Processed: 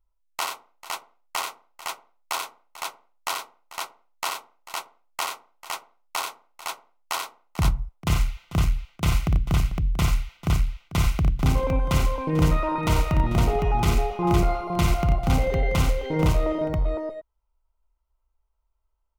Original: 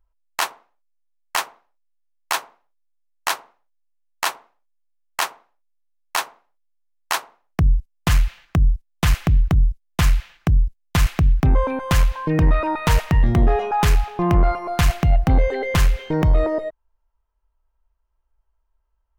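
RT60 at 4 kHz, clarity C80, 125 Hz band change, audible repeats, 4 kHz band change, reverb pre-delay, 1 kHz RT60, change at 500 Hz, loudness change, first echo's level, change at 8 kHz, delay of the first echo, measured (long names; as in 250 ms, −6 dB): no reverb audible, no reverb audible, −3.5 dB, 4, −3.0 dB, no reverb audible, no reverb audible, −2.5 dB, −5.0 dB, −5.0 dB, −3.0 dB, 57 ms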